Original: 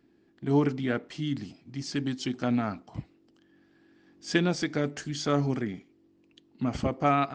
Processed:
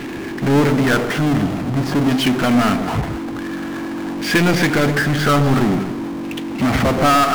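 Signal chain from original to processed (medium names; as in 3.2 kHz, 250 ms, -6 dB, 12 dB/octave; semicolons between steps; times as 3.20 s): LFO low-pass saw down 0.48 Hz 990–2500 Hz; power-law waveshaper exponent 0.35; echo whose repeats swap between lows and highs 123 ms, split 1 kHz, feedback 53%, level -7 dB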